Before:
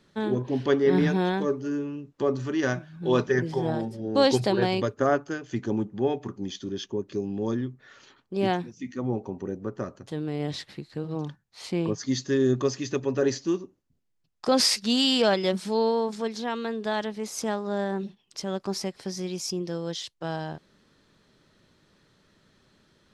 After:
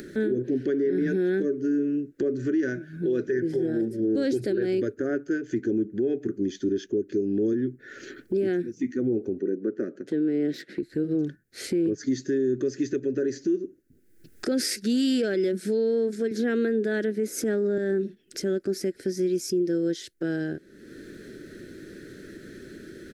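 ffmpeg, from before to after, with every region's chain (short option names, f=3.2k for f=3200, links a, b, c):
-filter_complex "[0:a]asettb=1/sr,asplit=3[a][b][c];[a]atrim=end=9.394[d];[b]atrim=start=9.39:end=10.83,asetpts=PTS-STARTPTS,afade=t=in:d=0.004:c=qsin,afade=t=out:st=1.436:d=0.004:c=qsin,highpass=f=170:w=0.5412,highpass=f=170:w=1.3066,adynamicsmooth=sensitivity=4:basefreq=5.7k[e];[c]atrim=start=10.826[f];[d][e]acrossfade=d=0.004:c1=hsin:c2=qsin[g];[g][f]acrossfade=d=0.004:c1=qsin:c2=hsin,asettb=1/sr,asplit=3[h][i][j];[h]atrim=end=16.314[k];[i]atrim=start=16.31:end=17.78,asetpts=PTS-STARTPTS,afade=t=in:d=0.004:c=qsin,afade=t=out:st=1.466:d=0.004:c=qsin,highpass=f=120:w=0.5412,highpass=f=120:w=1.3066,equalizer=f=5.8k:w=0.4:g=-4.5,acontrast=51[l];[j]atrim=start=17.776[m];[k][l]acrossfade=d=0.004:c1=hsin:c2=qsin[n];[n][m]acrossfade=d=0.004:c1=qsin:c2=hsin,firequalizer=gain_entry='entry(160,0);entry(340,14);entry(970,-27);entry(1500,6);entry(2900,-7);entry(11000,6)':delay=0.05:min_phase=1,alimiter=limit=-18dB:level=0:latency=1:release=171,acompressor=mode=upward:threshold=-29dB:ratio=2.5"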